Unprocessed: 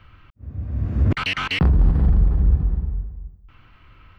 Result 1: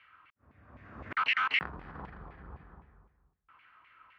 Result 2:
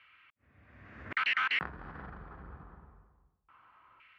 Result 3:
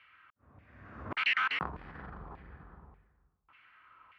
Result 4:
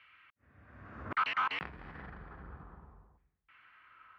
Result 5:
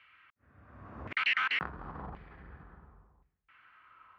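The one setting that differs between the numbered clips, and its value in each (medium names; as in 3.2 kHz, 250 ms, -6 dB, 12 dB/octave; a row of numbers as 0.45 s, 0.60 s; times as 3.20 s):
LFO band-pass, rate: 3.9 Hz, 0.25 Hz, 1.7 Hz, 0.63 Hz, 0.93 Hz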